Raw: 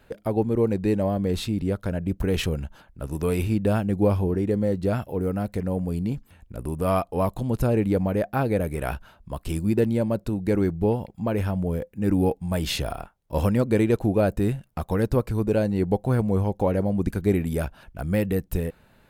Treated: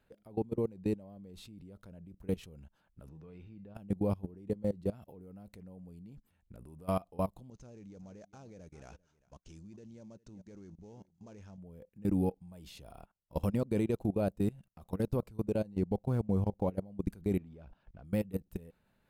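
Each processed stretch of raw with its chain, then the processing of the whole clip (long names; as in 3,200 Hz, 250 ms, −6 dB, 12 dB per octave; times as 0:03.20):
0:03.09–0:03.75: high-frequency loss of the air 190 metres + tuned comb filter 160 Hz, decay 0.33 s, harmonics odd, mix 70%
0:07.50–0:11.58: gap after every zero crossing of 0.063 ms + transistor ladder low-pass 6,700 Hz, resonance 75% + single-tap delay 396 ms −17.5 dB
0:15.74–0:16.67: running median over 9 samples + low-shelf EQ 170 Hz +3 dB
0:17.38–0:18.05: mu-law and A-law mismatch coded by mu + high-frequency loss of the air 180 metres
whole clip: dynamic equaliser 1,700 Hz, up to −7 dB, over −48 dBFS, Q 1.9; output level in coarse steps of 22 dB; parametric band 190 Hz +4 dB 0.43 octaves; level −8 dB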